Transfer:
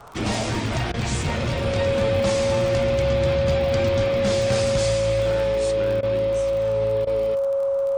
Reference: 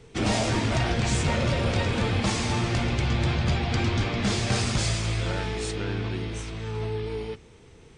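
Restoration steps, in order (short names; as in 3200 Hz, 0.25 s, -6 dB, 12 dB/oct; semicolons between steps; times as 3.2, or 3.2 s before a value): de-click; notch 550 Hz, Q 30; interpolate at 0.92/6.01/7.05, 18 ms; noise print and reduce 10 dB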